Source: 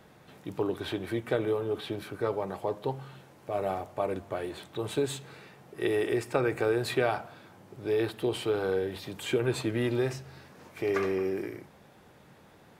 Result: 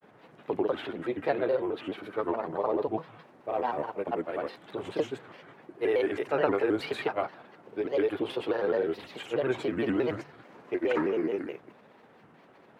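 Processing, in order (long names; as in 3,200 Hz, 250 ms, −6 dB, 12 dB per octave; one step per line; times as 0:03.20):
three-way crossover with the lows and the highs turned down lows −20 dB, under 170 Hz, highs −15 dB, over 3,100 Hz
granular cloud, pitch spread up and down by 3 semitones
pitch modulation by a square or saw wave square 4.7 Hz, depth 160 cents
level +2.5 dB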